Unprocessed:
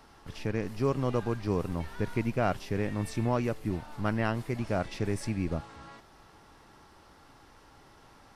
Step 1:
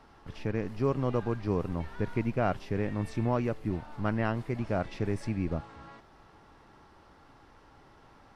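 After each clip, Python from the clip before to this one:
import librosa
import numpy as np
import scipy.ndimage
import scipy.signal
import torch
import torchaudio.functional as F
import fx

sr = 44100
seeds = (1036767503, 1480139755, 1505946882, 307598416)

y = fx.lowpass(x, sr, hz=2600.0, slope=6)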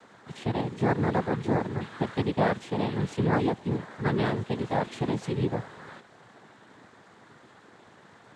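y = fx.noise_vocoder(x, sr, seeds[0], bands=6)
y = y * librosa.db_to_amplitude(4.0)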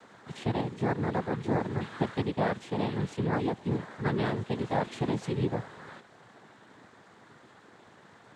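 y = fx.rider(x, sr, range_db=10, speed_s=0.5)
y = y * librosa.db_to_amplitude(-2.5)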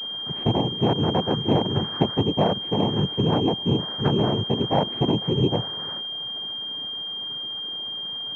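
y = fx.env_lowpass_down(x, sr, base_hz=1100.0, full_db=-24.5)
y = fx.pwm(y, sr, carrier_hz=3200.0)
y = y * librosa.db_to_amplitude(8.0)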